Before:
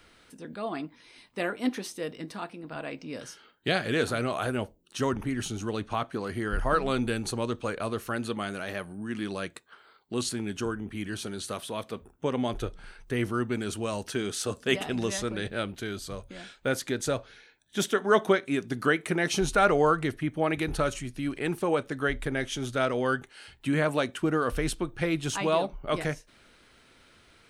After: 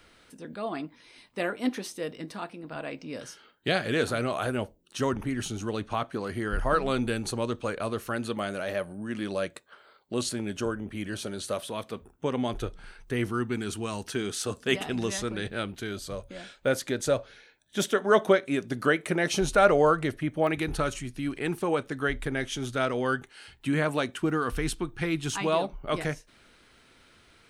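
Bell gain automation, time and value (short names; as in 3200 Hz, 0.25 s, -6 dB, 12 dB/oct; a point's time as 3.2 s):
bell 570 Hz 0.31 oct
+2 dB
from 8.39 s +10 dB
from 11.7 s -1 dB
from 13.28 s -10 dB
from 14.07 s -3 dB
from 15.91 s +6.5 dB
from 20.47 s -3 dB
from 24.3 s -13 dB
from 25.44 s -1.5 dB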